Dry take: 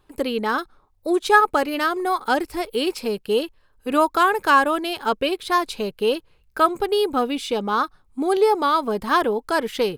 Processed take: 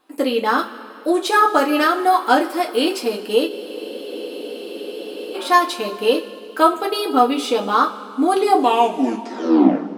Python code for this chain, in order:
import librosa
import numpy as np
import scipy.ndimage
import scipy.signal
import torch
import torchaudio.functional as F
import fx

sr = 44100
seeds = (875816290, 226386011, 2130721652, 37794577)

y = fx.tape_stop_end(x, sr, length_s=1.58)
y = fx.brickwall_highpass(y, sr, low_hz=190.0)
y = fx.rev_double_slope(y, sr, seeds[0], early_s=0.2, late_s=2.6, knee_db=-21, drr_db=-1.0)
y = fx.spec_freeze(y, sr, seeds[1], at_s=3.51, hold_s=1.84)
y = y * 10.0 ** (1.5 / 20.0)